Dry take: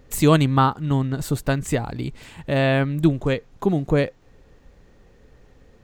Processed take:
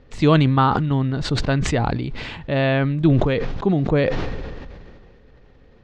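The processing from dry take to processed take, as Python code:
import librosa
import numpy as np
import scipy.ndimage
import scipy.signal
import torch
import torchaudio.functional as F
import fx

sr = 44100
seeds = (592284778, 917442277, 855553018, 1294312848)

y = scipy.signal.sosfilt(scipy.signal.butter(4, 4700.0, 'lowpass', fs=sr, output='sos'), x)
y = fx.sustainer(y, sr, db_per_s=28.0)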